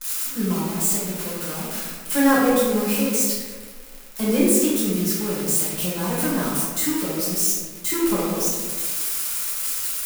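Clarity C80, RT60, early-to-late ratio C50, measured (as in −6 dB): 2.0 dB, 1.6 s, −1.0 dB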